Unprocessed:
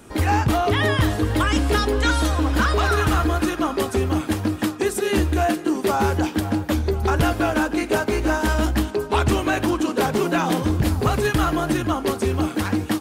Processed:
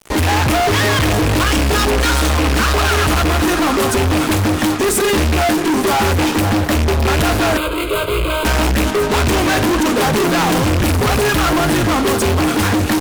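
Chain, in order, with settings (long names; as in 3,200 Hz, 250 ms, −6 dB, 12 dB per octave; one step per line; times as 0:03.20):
loose part that buzzes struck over −20 dBFS, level −18 dBFS
fuzz pedal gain 36 dB, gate −39 dBFS
0:07.57–0:08.45: phaser with its sweep stopped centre 1,200 Hz, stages 8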